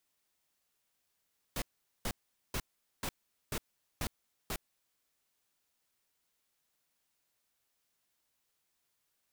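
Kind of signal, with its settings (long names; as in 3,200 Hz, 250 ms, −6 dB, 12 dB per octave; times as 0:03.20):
noise bursts pink, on 0.06 s, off 0.43 s, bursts 7, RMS −35.5 dBFS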